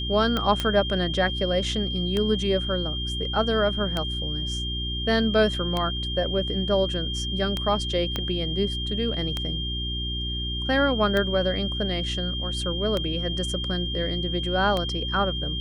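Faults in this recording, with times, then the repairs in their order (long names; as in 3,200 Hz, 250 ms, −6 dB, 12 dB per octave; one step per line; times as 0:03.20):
mains hum 60 Hz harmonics 6 −31 dBFS
scratch tick 33 1/3 rpm −12 dBFS
whistle 3,200 Hz −30 dBFS
0:00.60: click −11 dBFS
0:08.16: click −13 dBFS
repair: click removal
hum removal 60 Hz, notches 6
notch filter 3,200 Hz, Q 30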